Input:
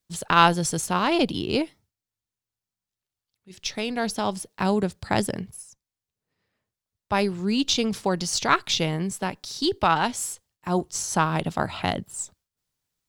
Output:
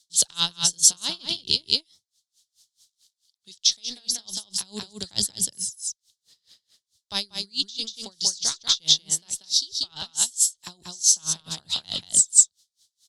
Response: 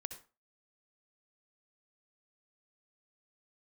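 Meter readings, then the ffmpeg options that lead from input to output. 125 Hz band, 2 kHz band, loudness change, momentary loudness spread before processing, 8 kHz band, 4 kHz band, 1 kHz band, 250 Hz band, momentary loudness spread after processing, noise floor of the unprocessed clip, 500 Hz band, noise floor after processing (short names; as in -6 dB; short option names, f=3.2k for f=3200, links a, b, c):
-14.5 dB, -14.0 dB, +2.5 dB, 11 LU, +12.0 dB, +6.5 dB, -20.0 dB, -16.5 dB, 13 LU, under -85 dBFS, -18.5 dB, -85 dBFS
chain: -filter_complex "[0:a]lowpass=8.1k,aecho=1:1:187:0.668,acrossover=split=170[a][b];[b]acompressor=threshold=-30dB:ratio=3[c];[a][c]amix=inputs=2:normalize=0,aexciter=amount=15.9:drive=4.7:freq=3.8k,equalizer=f=3.3k:w=1.1:g=13.5,dynaudnorm=f=180:g=7:m=11.5dB,aeval=exprs='val(0)*pow(10,-29*(0.5-0.5*cos(2*PI*4.6*n/s))/20)':c=same"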